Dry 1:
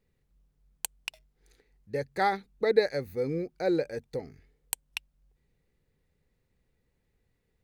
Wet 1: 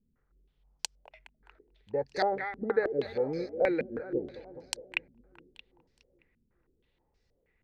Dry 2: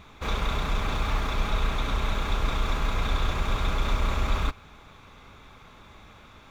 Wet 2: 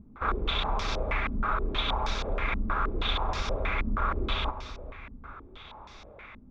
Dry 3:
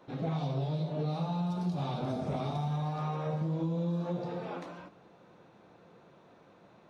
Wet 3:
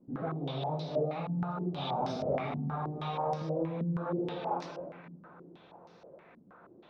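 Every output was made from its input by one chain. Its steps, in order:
compressor 1.5:1, threshold -29 dBFS; bell 140 Hz -6 dB 1.7 oct; on a send: split-band echo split 310 Hz, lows 0.408 s, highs 0.208 s, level -11 dB; on the sum: stepped low-pass 6.3 Hz 230–5300 Hz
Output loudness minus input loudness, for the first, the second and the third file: -1.5, -1.5, -0.5 LU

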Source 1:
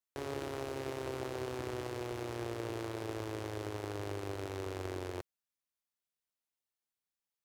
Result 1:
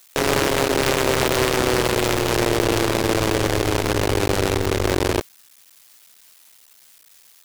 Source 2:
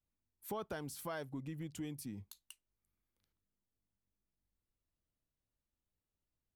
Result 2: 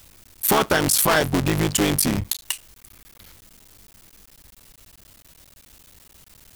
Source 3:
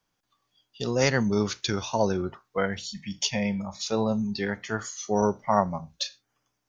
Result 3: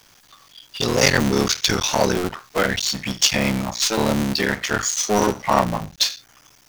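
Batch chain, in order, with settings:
cycle switcher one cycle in 3, muted; tilt shelf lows -4.5 dB, about 1400 Hz; power-law curve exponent 0.7; match loudness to -20 LUFS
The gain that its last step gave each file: +20.0, +24.0, +5.5 dB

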